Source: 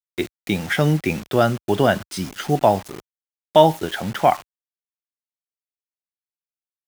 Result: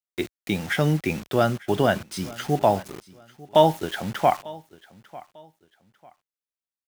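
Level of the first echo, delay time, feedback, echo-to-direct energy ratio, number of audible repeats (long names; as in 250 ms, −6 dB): −21.0 dB, 897 ms, 29%, −20.5 dB, 2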